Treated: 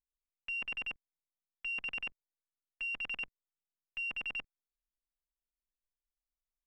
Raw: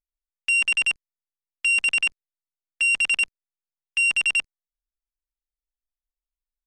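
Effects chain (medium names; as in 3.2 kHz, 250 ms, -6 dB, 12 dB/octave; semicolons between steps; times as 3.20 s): tape spacing loss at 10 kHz 44 dB; trim -5 dB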